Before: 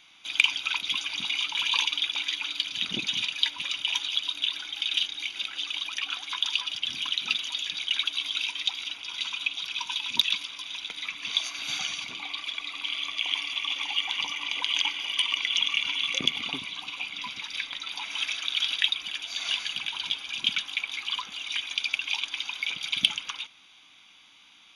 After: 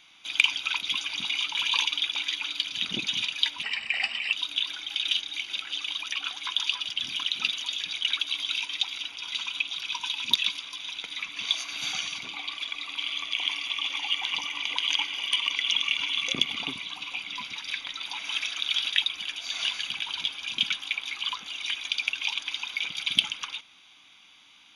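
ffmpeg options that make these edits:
ffmpeg -i in.wav -filter_complex "[0:a]asplit=3[link_01][link_02][link_03];[link_01]atrim=end=3.634[link_04];[link_02]atrim=start=3.63:end=4.19,asetpts=PTS-STARTPTS,asetrate=35280,aresample=44100[link_05];[link_03]atrim=start=4.186[link_06];[link_04][link_05]acrossfade=duration=0.004:curve1=hsin:curve2=hsin[link_07];[link_07][link_06]acrossfade=duration=0.004:curve1=hsin:curve2=hsin" out.wav

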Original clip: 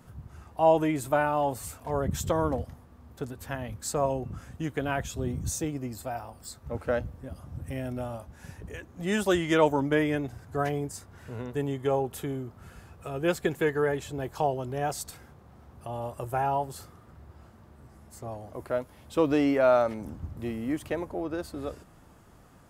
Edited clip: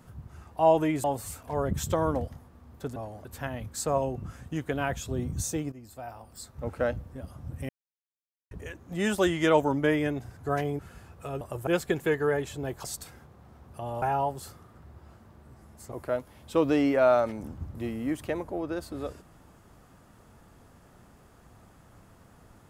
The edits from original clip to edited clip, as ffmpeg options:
ffmpeg -i in.wav -filter_complex "[0:a]asplit=13[link_01][link_02][link_03][link_04][link_05][link_06][link_07][link_08][link_09][link_10][link_11][link_12][link_13];[link_01]atrim=end=1.042[link_14];[link_02]atrim=start=1.408:end=3.332[link_15];[link_03]atrim=start=18.248:end=18.542[link_16];[link_04]atrim=start=3.328:end=5.8,asetpts=PTS-STARTPTS,afade=type=out:start_time=2.468:duration=0.004:curve=hsin:silence=0.199526[link_17];[link_05]atrim=start=5.8:end=7.77,asetpts=PTS-STARTPTS,afade=type=in:duration=0.85:silence=0.199526,afade=type=out:start_time=1.966:duration=0.004:curve=hsin[link_18];[link_06]atrim=start=7.77:end=8.59,asetpts=PTS-STARTPTS,volume=0[link_19];[link_07]atrim=start=8.59:end=10.872,asetpts=PTS-STARTPTS,afade=type=in:duration=0.004:curve=hsin[link_20];[link_08]atrim=start=12.598:end=13.222[link_21];[link_09]atrim=start=16.088:end=16.352[link_22];[link_10]atrim=start=13.218:end=14.392[link_23];[link_11]atrim=start=14.908:end=16.092[link_24];[link_12]atrim=start=16.348:end=18.252[link_25];[link_13]atrim=start=18.538[link_26];[link_14][link_15]acrossfade=duration=0.004:curve1=hsin:curve2=hsin[link_27];[link_27][link_16]acrossfade=duration=0.004:curve1=hsin:curve2=hsin[link_28];[link_17][link_18][link_19][link_20]concat=n=4:v=0:a=1[link_29];[link_28][link_29]acrossfade=duration=0.004:curve1=hsin:curve2=hsin[link_30];[link_30][link_21]acrossfade=duration=0.004:curve1=hsin:curve2=hsin[link_31];[link_31][link_22]acrossfade=duration=0.004:curve1=hsin:curve2=hsin[link_32];[link_32][link_23]acrossfade=duration=0.004:curve1=hsin:curve2=hsin[link_33];[link_33][link_24]acrossfade=duration=0.004:curve1=hsin:curve2=hsin[link_34];[link_34][link_25]acrossfade=duration=0.004:curve1=hsin:curve2=hsin[link_35];[link_35][link_26]acrossfade=duration=0.004:curve1=hsin:curve2=hsin" out.wav

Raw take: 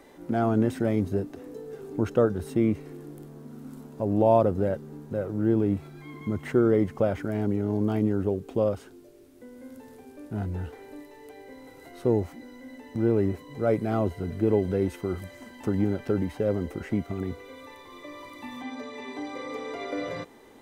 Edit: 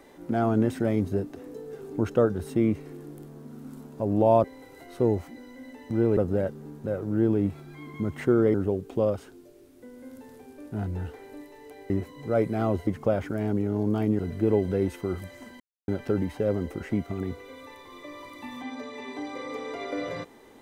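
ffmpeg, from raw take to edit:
ffmpeg -i in.wav -filter_complex "[0:a]asplit=9[link_01][link_02][link_03][link_04][link_05][link_06][link_07][link_08][link_09];[link_01]atrim=end=4.442[link_10];[link_02]atrim=start=11.488:end=13.222[link_11];[link_03]atrim=start=4.438:end=6.812[link_12];[link_04]atrim=start=8.128:end=11.492[link_13];[link_05]atrim=start=13.218:end=14.192[link_14];[link_06]atrim=start=6.808:end=8.132[link_15];[link_07]atrim=start=14.188:end=15.6,asetpts=PTS-STARTPTS,afade=type=out:start_time=1.408:duration=0.004:curve=hsin[link_16];[link_08]atrim=start=15.6:end=15.88,asetpts=PTS-STARTPTS,volume=0[link_17];[link_09]atrim=start=15.88,asetpts=PTS-STARTPTS,afade=type=in:duration=0.004:curve=hsin[link_18];[link_10][link_11]acrossfade=duration=0.004:curve1=hsin:curve2=hsin[link_19];[link_19][link_12]acrossfade=duration=0.004:curve1=hsin:curve2=hsin[link_20];[link_20][link_13]acrossfade=duration=0.004:curve1=hsin:curve2=hsin[link_21];[link_21][link_14]acrossfade=duration=0.004:curve1=hsin:curve2=hsin[link_22];[link_22][link_15]acrossfade=duration=0.004:curve1=hsin:curve2=hsin[link_23];[link_16][link_17][link_18]concat=n=3:v=0:a=1[link_24];[link_23][link_24]acrossfade=duration=0.004:curve1=hsin:curve2=hsin" out.wav

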